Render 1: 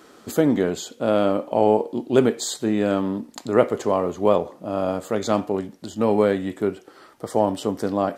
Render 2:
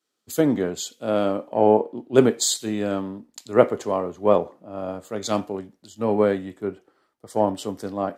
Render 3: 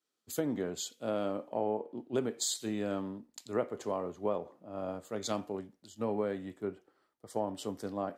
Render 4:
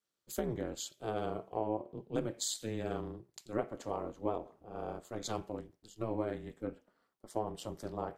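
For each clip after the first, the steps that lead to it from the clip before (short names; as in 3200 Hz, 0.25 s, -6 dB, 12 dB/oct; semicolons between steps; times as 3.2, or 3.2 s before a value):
three-band expander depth 100%; gain -2.5 dB
compressor 4:1, threshold -22 dBFS, peak gain reduction 12 dB; gain -7.5 dB
ring modulator 110 Hz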